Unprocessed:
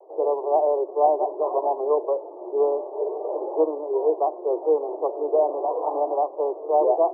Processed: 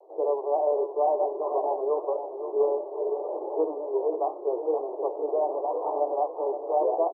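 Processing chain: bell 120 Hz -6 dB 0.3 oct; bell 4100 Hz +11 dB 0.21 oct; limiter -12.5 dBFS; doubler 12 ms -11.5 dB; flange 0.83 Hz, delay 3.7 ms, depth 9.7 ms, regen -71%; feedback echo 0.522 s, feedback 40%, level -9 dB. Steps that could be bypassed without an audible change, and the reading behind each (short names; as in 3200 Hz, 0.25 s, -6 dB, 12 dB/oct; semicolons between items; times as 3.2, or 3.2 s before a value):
bell 120 Hz: input band starts at 270 Hz; bell 4100 Hz: input band ends at 1100 Hz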